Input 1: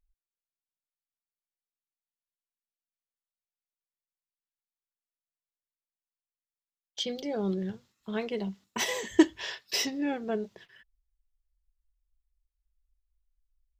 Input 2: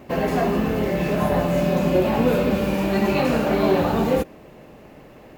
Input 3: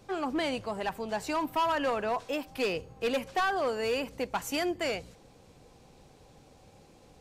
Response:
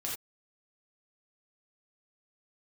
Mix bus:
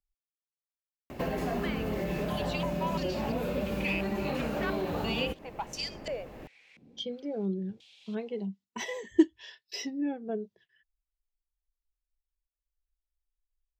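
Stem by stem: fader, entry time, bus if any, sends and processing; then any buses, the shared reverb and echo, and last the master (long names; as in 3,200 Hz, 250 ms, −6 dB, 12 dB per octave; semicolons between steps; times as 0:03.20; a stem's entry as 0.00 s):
+3.0 dB, 0.00 s, no send, every bin expanded away from the loudest bin 1.5 to 1
−6.0 dB, 1.10 s, no send, low-shelf EQ 63 Hz +10 dB; downward compressor, threshold −23 dBFS, peak gain reduction 9.5 dB
−1.0 dB, 1.25 s, no send, high shelf with overshoot 1,700 Hz +9 dB, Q 1.5; band-pass on a step sequencer 2.9 Hz 230–5,100 Hz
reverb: not used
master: multiband upward and downward compressor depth 40%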